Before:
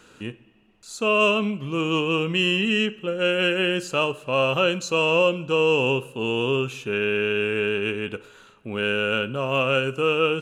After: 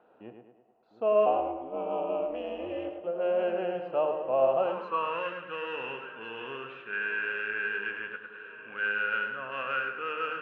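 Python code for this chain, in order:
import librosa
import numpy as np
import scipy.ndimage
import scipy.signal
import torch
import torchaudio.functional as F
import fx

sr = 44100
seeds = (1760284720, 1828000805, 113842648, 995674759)

p1 = scipy.signal.sosfilt(scipy.signal.butter(4, 3700.0, 'lowpass', fs=sr, output='sos'), x)
p2 = fx.low_shelf(p1, sr, hz=310.0, db=8.5)
p3 = fx.hum_notches(p2, sr, base_hz=50, count=3)
p4 = p3 + fx.echo_alternate(p3, sr, ms=703, hz=1200.0, feedback_pct=74, wet_db=-14.0, dry=0)
p5 = fx.ring_mod(p4, sr, carrier_hz=130.0, at=(1.25, 3.03), fade=0.02)
p6 = np.clip(p5, -10.0 ** (-14.5 / 20.0), 10.0 ** (-14.5 / 20.0))
p7 = p5 + (p6 * 10.0 ** (-10.5 / 20.0))
p8 = fx.echo_tape(p7, sr, ms=105, feedback_pct=51, wet_db=-5.0, lp_hz=2900.0, drive_db=7.0, wow_cents=19)
p9 = fx.filter_sweep_bandpass(p8, sr, from_hz=710.0, to_hz=1600.0, start_s=4.57, end_s=5.29, q=6.0)
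y = fx.peak_eq(p9, sr, hz=500.0, db=2.5, octaves=2.7)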